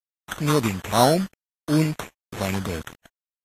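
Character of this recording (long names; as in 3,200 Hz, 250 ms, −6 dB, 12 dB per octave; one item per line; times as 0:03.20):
a quantiser's noise floor 6 bits, dither none
phaser sweep stages 12, 2.2 Hz, lowest notch 790–2,100 Hz
aliases and images of a low sample rate 4,800 Hz, jitter 0%
Ogg Vorbis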